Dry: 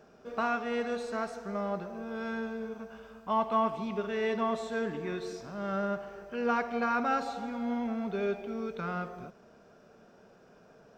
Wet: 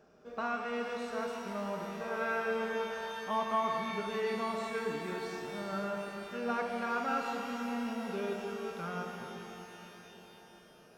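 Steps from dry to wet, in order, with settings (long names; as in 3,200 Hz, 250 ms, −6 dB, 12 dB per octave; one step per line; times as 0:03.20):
gain on a spectral selection 0:02.00–0:03.12, 440–2,900 Hz +10 dB
reverb with rising layers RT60 4 s, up +12 semitones, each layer −8 dB, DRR 2.5 dB
level −5.5 dB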